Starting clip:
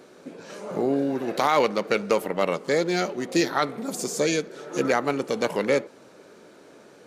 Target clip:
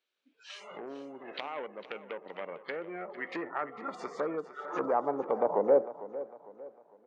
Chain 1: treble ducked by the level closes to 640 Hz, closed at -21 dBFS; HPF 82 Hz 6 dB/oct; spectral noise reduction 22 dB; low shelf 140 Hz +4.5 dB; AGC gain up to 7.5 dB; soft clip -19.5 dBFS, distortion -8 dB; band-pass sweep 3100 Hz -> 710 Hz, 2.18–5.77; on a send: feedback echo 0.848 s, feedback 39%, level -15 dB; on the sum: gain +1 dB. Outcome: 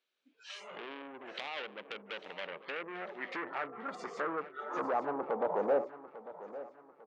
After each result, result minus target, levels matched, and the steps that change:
echo 0.396 s late; soft clip: distortion +11 dB
change: feedback echo 0.452 s, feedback 39%, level -15 dB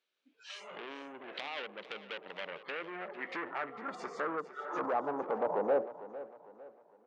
soft clip: distortion +11 dB
change: soft clip -9 dBFS, distortion -19 dB

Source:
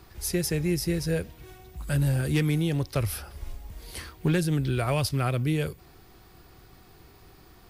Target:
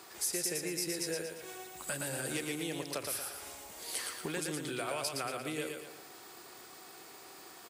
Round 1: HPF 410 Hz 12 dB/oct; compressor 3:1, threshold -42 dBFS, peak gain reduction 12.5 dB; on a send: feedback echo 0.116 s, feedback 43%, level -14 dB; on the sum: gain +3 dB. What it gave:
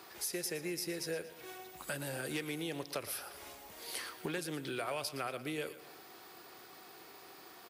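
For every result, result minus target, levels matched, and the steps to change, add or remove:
echo-to-direct -9.5 dB; 8000 Hz band -3.5 dB
change: feedback echo 0.116 s, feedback 43%, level -4.5 dB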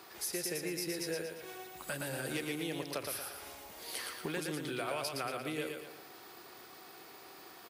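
8000 Hz band -3.5 dB
add after compressor: bell 7800 Hz +9.5 dB 0.64 oct

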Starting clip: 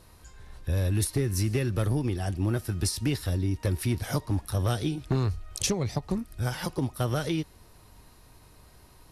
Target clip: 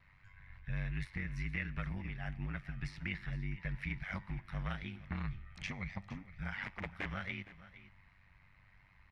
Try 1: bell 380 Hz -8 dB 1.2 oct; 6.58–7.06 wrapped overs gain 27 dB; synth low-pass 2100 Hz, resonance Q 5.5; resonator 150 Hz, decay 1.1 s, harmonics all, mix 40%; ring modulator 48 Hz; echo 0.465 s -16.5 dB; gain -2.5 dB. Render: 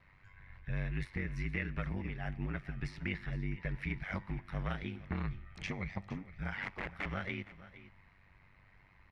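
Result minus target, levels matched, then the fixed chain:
500 Hz band +4.5 dB
bell 380 Hz -20 dB 1.2 oct; 6.58–7.06 wrapped overs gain 27 dB; synth low-pass 2100 Hz, resonance Q 5.5; resonator 150 Hz, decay 1.1 s, harmonics all, mix 40%; ring modulator 48 Hz; echo 0.465 s -16.5 dB; gain -2.5 dB

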